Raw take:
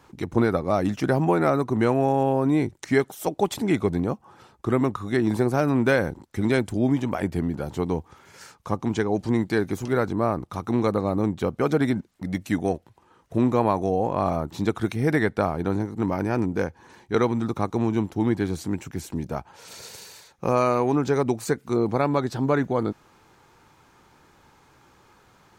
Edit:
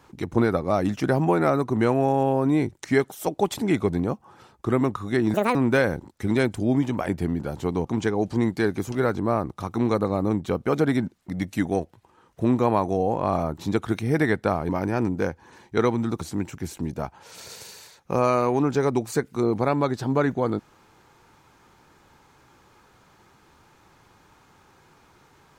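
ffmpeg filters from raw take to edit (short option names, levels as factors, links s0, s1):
-filter_complex "[0:a]asplit=6[s0][s1][s2][s3][s4][s5];[s0]atrim=end=5.344[s6];[s1]atrim=start=5.34:end=5.69,asetpts=PTS-STARTPTS,asetrate=73647,aresample=44100[s7];[s2]atrim=start=5.686:end=7.992[s8];[s3]atrim=start=8.778:end=15.622[s9];[s4]atrim=start=16.058:end=17.582[s10];[s5]atrim=start=18.538[s11];[s6][s7]acrossfade=d=0.004:c1=hsin:c2=hsin[s12];[s12][s8]acrossfade=d=0.004:c1=hsin:c2=hsin[s13];[s13][s9]acrossfade=d=0.004:c1=hsin:c2=hsin[s14];[s14][s10]acrossfade=d=0.004:c1=hsin:c2=hsin[s15];[s15][s11]acrossfade=d=0.004:c1=hsin:c2=hsin"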